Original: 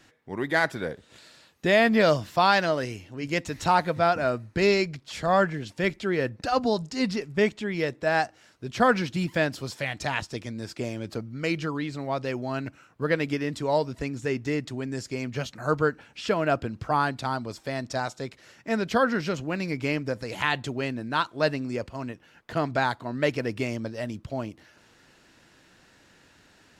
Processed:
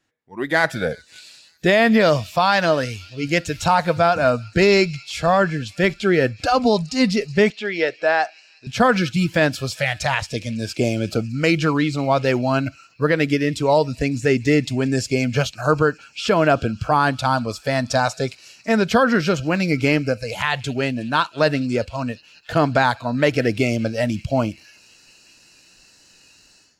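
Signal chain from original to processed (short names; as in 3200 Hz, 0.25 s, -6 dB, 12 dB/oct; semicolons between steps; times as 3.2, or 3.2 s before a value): thin delay 0.184 s, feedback 81%, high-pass 2100 Hz, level -21 dB; AGC gain up to 12.5 dB; spectral noise reduction 15 dB; 7.5–8.67 BPF 410–4500 Hz; limiter -6.5 dBFS, peak gain reduction 5.5 dB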